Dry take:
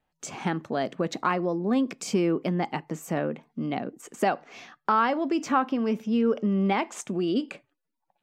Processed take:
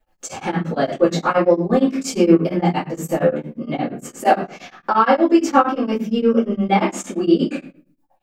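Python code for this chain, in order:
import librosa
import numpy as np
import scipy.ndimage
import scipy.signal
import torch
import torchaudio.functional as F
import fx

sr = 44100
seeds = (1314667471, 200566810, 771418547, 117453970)

y = fx.high_shelf(x, sr, hz=10000.0, db=7.0)
y = fx.room_shoebox(y, sr, seeds[0], volume_m3=37.0, walls='mixed', distance_m=2.2)
y = y * np.abs(np.cos(np.pi * 8.6 * np.arange(len(y)) / sr))
y = F.gain(torch.from_numpy(y), -2.0).numpy()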